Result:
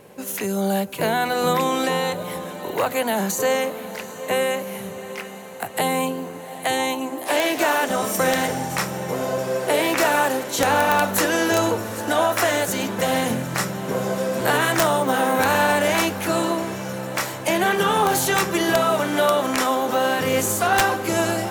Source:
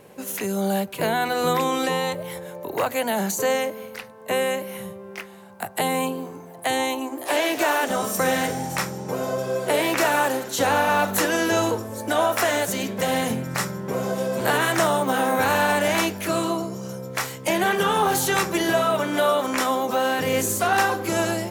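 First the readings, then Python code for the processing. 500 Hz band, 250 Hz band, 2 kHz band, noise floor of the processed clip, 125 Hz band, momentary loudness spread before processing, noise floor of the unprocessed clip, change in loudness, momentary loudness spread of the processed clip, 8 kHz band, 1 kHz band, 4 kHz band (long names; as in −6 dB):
+1.5 dB, +1.5 dB, +1.5 dB, −35 dBFS, +1.5 dB, 10 LU, −42 dBFS, +1.5 dB, 9 LU, +2.0 dB, +1.5 dB, +2.0 dB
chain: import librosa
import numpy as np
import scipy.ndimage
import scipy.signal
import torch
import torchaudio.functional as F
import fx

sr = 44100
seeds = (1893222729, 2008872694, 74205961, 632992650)

y = fx.echo_diffused(x, sr, ms=763, feedback_pct=68, wet_db=-15)
y = (np.mod(10.0 ** (10.0 / 20.0) * y + 1.0, 2.0) - 1.0) / 10.0 ** (10.0 / 20.0)
y = y * 10.0 ** (1.5 / 20.0)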